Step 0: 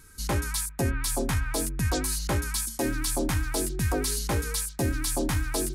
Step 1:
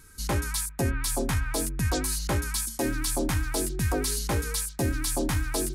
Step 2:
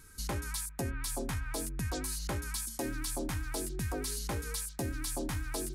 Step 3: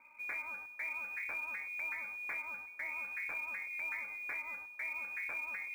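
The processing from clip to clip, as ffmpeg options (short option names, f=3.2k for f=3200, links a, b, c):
-af anull
-af "acompressor=threshold=-32dB:ratio=2.5,volume=-3dB"
-af "asoftclip=type=tanh:threshold=-29.5dB,lowpass=f=2.1k:t=q:w=0.5098,lowpass=f=2.1k:t=q:w=0.6013,lowpass=f=2.1k:t=q:w=0.9,lowpass=f=2.1k:t=q:w=2.563,afreqshift=-2500,acrusher=bits=6:mode=log:mix=0:aa=0.000001,volume=-3.5dB"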